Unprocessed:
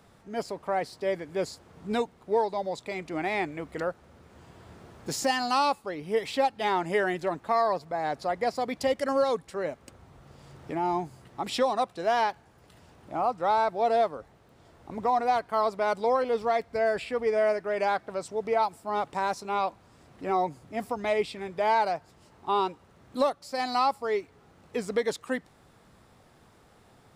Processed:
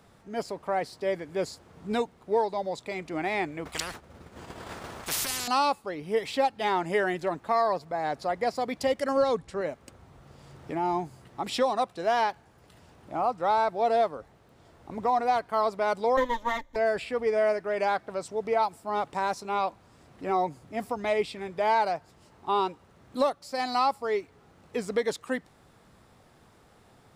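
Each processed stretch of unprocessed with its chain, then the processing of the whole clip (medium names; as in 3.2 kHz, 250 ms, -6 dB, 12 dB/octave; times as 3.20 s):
3.65–5.48 s: expander -43 dBFS + spectrum-flattening compressor 10:1
9.17–9.61 s: low-pass 8.8 kHz + bass shelf 150 Hz +10 dB
16.17–16.76 s: comb filter that takes the minimum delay 3.3 ms + rippled EQ curve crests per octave 1.1, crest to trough 12 dB + upward expansion, over -35 dBFS
whole clip: none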